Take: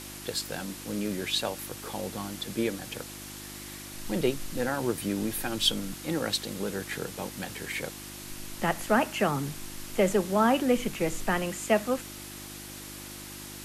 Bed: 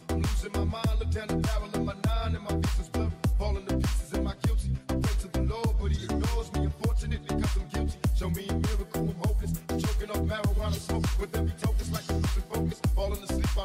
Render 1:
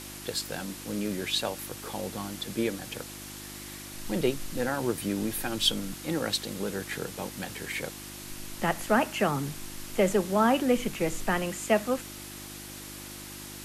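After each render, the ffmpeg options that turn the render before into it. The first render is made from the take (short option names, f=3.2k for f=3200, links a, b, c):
-af anull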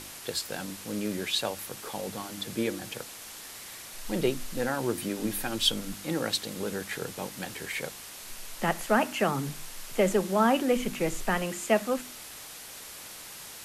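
-af "bandreject=f=50:t=h:w=4,bandreject=f=100:t=h:w=4,bandreject=f=150:t=h:w=4,bandreject=f=200:t=h:w=4,bandreject=f=250:t=h:w=4,bandreject=f=300:t=h:w=4,bandreject=f=350:t=h:w=4"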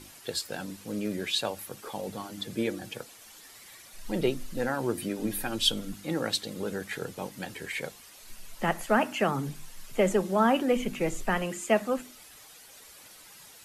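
-af "afftdn=nr=10:nf=-44"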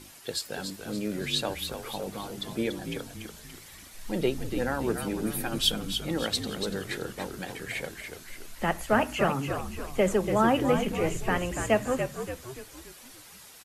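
-filter_complex "[0:a]asplit=6[a][b][c][d][e][f];[b]adelay=287,afreqshift=-65,volume=-7dB[g];[c]adelay=574,afreqshift=-130,volume=-13.7dB[h];[d]adelay=861,afreqshift=-195,volume=-20.5dB[i];[e]adelay=1148,afreqshift=-260,volume=-27.2dB[j];[f]adelay=1435,afreqshift=-325,volume=-34dB[k];[a][g][h][i][j][k]amix=inputs=6:normalize=0"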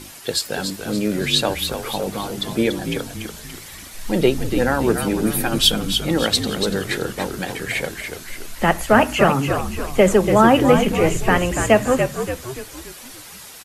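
-af "volume=10.5dB,alimiter=limit=-2dB:level=0:latency=1"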